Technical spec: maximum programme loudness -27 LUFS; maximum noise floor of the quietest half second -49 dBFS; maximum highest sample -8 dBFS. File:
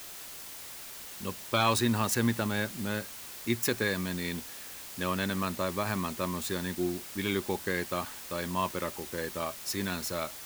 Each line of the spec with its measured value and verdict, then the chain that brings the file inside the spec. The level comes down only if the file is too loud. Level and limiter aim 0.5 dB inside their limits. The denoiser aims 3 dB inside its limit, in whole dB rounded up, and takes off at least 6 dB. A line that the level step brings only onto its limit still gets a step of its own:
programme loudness -32.0 LUFS: pass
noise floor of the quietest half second -44 dBFS: fail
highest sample -12.5 dBFS: pass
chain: noise reduction 8 dB, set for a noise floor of -44 dBFS

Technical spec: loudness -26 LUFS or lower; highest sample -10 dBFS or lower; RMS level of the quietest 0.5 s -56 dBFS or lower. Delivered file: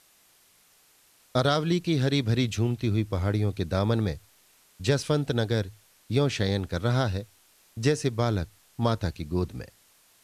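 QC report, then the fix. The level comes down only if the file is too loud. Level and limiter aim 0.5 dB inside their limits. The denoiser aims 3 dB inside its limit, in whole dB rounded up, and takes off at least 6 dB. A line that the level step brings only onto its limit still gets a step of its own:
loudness -27.0 LUFS: pass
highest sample -8.5 dBFS: fail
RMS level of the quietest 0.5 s -61 dBFS: pass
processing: peak limiter -10.5 dBFS

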